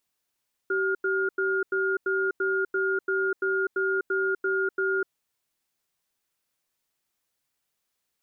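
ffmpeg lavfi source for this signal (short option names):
-f lavfi -i "aevalsrc='0.0531*(sin(2*PI*384*t)+sin(2*PI*1420*t))*clip(min(mod(t,0.34),0.25-mod(t,0.34))/0.005,0,1)':d=4.33:s=44100"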